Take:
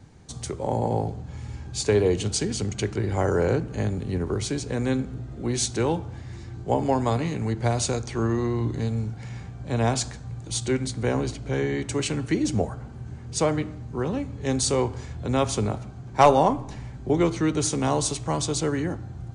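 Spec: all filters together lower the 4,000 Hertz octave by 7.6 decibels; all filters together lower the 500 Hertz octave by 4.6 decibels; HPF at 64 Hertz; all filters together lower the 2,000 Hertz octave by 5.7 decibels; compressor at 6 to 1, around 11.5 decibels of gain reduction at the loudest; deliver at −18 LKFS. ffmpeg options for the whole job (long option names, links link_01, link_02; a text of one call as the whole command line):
ffmpeg -i in.wav -af "highpass=64,equalizer=frequency=500:width_type=o:gain=-5.5,equalizer=frequency=2000:width_type=o:gain=-5,equalizer=frequency=4000:width_type=o:gain=-8.5,acompressor=threshold=-26dB:ratio=6,volume=14dB" out.wav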